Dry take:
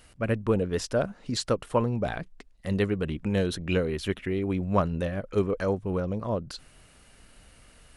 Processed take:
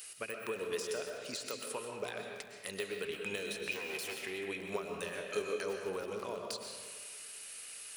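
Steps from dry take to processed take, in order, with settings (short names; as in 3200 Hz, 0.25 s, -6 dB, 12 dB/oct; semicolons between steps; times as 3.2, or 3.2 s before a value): 3.71–4.15 minimum comb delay 8.3 ms; de-esser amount 95%; differentiator; compressor 12:1, threshold -52 dBFS, peak gain reduction 15.5 dB; small resonant body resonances 420/2500 Hz, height 11 dB, ringing for 40 ms; 4.82–5.56 flutter echo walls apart 4 m, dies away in 0.2 s; reverb RT60 1.6 s, pre-delay 85 ms, DRR 2 dB; lo-fi delay 0.333 s, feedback 80%, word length 8-bit, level -14.5 dB; gain +12.5 dB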